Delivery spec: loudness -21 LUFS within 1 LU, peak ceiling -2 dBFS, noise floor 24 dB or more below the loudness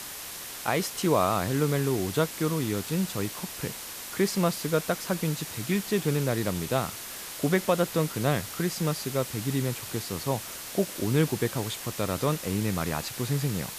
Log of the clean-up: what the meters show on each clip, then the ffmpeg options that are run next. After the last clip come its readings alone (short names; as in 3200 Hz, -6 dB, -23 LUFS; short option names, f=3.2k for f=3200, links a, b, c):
noise floor -40 dBFS; noise floor target -53 dBFS; loudness -28.5 LUFS; peak -10.0 dBFS; loudness target -21.0 LUFS
-> -af "afftdn=nr=13:nf=-40"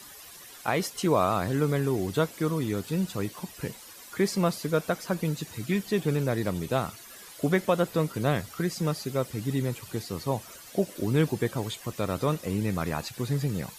noise floor -47 dBFS; noise floor target -53 dBFS
-> -af "afftdn=nr=6:nf=-47"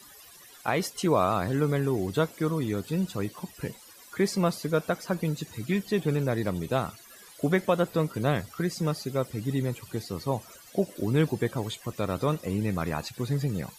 noise floor -51 dBFS; noise floor target -53 dBFS
-> -af "afftdn=nr=6:nf=-51"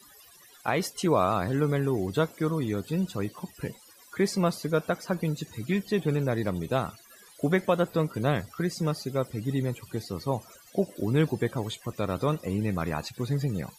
noise floor -54 dBFS; loudness -29.0 LUFS; peak -10.5 dBFS; loudness target -21.0 LUFS
-> -af "volume=8dB"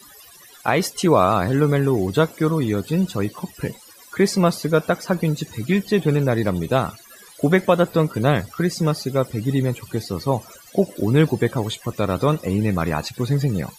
loudness -21.0 LUFS; peak -2.5 dBFS; noise floor -46 dBFS